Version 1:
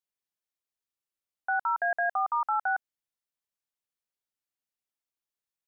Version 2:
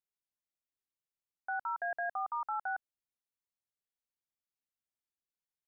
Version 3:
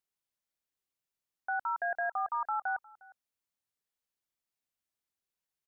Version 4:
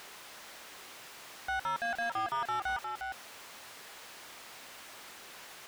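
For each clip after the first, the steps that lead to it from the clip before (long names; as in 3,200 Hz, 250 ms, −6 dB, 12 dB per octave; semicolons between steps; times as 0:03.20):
low-shelf EQ 330 Hz +7.5 dB; level −9 dB
single-tap delay 357 ms −23 dB; level +3 dB
converter with a step at zero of −48.5 dBFS; mid-hump overdrive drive 27 dB, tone 1,800 Hz, clips at −24.5 dBFS; level −2.5 dB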